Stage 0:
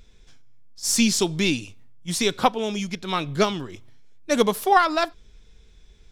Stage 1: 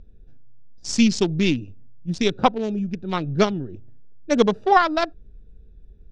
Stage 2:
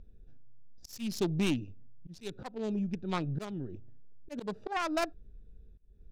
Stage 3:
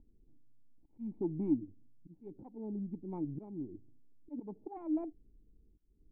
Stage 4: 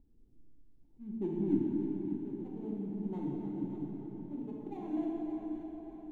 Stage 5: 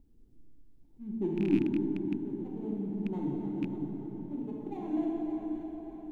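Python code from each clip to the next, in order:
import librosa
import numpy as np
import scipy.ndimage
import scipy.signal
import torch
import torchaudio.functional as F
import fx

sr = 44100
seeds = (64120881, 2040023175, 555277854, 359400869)

y1 = fx.wiener(x, sr, points=41)
y1 = scipy.signal.sosfilt(scipy.signal.butter(4, 6300.0, 'lowpass', fs=sr, output='sos'), y1)
y1 = fx.low_shelf(y1, sr, hz=330.0, db=4.5)
y1 = F.gain(torch.from_numpy(y1), 1.0).numpy()
y2 = fx.self_delay(y1, sr, depth_ms=0.19)
y2 = fx.auto_swell(y2, sr, attack_ms=276.0)
y2 = 10.0 ** (-15.0 / 20.0) * np.tanh(y2 / 10.0 ** (-15.0 / 20.0))
y2 = F.gain(torch.from_numpy(y2), -6.5).numpy()
y3 = fx.formant_cascade(y2, sr, vowel='u')
y3 = F.gain(torch.from_numpy(y3), 3.5).numpy()
y4 = scipy.ndimage.median_filter(y3, 25, mode='constant')
y4 = fx.echo_feedback(y4, sr, ms=582, feedback_pct=48, wet_db=-10.0)
y4 = fx.rev_plate(y4, sr, seeds[0], rt60_s=4.1, hf_ratio=0.65, predelay_ms=0, drr_db=-4.0)
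y4 = F.gain(torch.from_numpy(y4), -3.0).numpy()
y5 = fx.rattle_buzz(y4, sr, strikes_db=-33.0, level_db=-36.0)
y5 = F.gain(torch.from_numpy(y5), 3.5).numpy()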